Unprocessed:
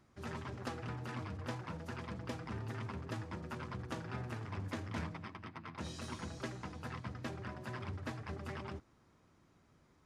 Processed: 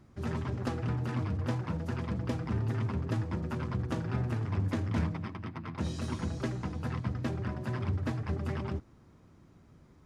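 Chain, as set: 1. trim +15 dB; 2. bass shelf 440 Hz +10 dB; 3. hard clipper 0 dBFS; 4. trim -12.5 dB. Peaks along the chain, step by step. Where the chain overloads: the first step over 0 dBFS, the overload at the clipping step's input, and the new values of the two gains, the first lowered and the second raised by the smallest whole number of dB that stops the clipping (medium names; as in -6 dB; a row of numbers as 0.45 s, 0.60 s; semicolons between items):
-9.5 dBFS, -5.0 dBFS, -5.0 dBFS, -17.5 dBFS; nothing clips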